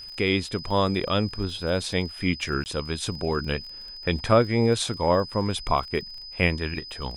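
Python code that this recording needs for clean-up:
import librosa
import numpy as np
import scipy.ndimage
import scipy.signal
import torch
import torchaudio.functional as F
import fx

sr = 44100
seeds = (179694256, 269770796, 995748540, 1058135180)

y = fx.fix_declick_ar(x, sr, threshold=6.5)
y = fx.notch(y, sr, hz=5000.0, q=30.0)
y = fx.fix_interpolate(y, sr, at_s=(2.64,), length_ms=19.0)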